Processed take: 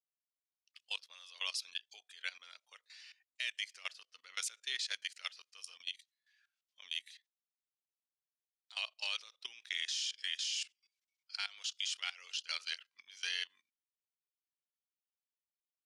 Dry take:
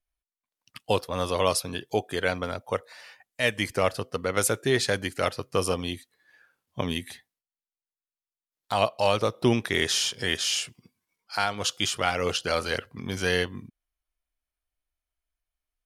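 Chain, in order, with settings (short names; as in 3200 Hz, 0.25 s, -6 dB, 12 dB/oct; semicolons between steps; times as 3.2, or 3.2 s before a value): Butterworth band-pass 4200 Hz, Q 0.9; level quantiser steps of 18 dB; gain -1.5 dB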